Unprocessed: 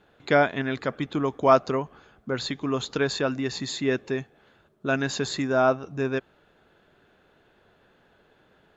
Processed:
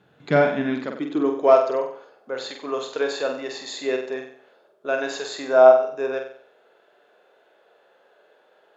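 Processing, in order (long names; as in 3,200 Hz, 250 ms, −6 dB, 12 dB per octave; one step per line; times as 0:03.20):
harmonic generator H 5 −29 dB, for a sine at −4.5 dBFS
harmonic and percussive parts rebalanced percussive −7 dB
high-pass filter sweep 130 Hz → 530 Hz, 0:00.04–0:01.71
on a send: flutter between parallel walls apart 8 metres, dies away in 0.52 s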